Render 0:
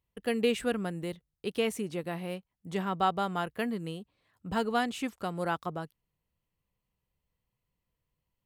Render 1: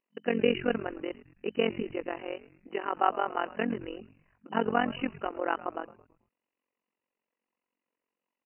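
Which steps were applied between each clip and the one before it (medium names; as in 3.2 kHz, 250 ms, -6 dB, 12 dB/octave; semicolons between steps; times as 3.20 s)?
FFT band-pass 210–3000 Hz; AM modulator 45 Hz, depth 85%; frequency-shifting echo 109 ms, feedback 45%, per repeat -110 Hz, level -17.5 dB; trim +5.5 dB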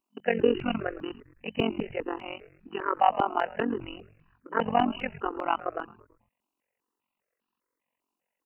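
stepped phaser 5 Hz 500–2100 Hz; trim +6 dB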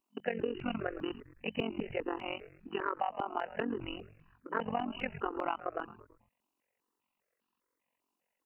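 compression 12:1, threshold -30 dBFS, peak gain reduction 15.5 dB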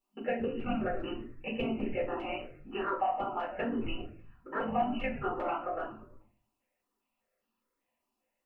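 reverberation RT60 0.35 s, pre-delay 4 ms, DRR -6.5 dB; trim -8 dB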